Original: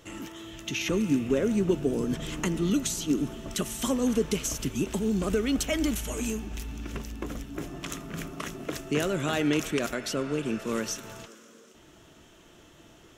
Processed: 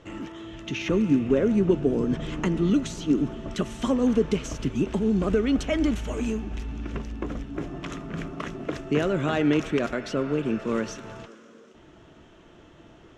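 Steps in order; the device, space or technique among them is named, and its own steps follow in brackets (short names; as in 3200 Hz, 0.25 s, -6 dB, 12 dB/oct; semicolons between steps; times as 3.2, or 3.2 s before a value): through cloth (LPF 7100 Hz 12 dB/oct; high shelf 3600 Hz -14 dB); gain +4 dB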